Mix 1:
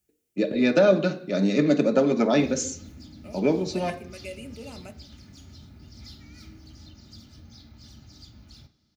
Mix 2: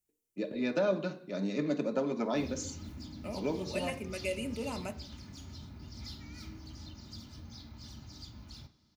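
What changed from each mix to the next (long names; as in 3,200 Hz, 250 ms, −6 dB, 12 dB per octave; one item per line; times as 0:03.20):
first voice −11.5 dB
second voice +3.5 dB
master: add parametric band 990 Hz +10 dB 0.24 octaves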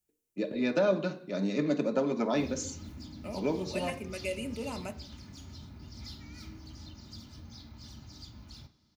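first voice +3.0 dB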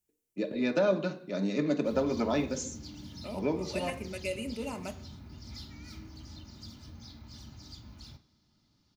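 background: entry −0.50 s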